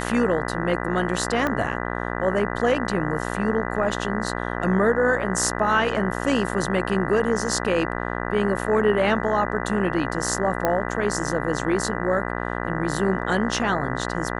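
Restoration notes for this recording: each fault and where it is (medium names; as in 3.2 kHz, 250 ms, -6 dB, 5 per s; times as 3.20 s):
buzz 60 Hz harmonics 33 -28 dBFS
1.47 s: pop -11 dBFS
10.65 s: pop -8 dBFS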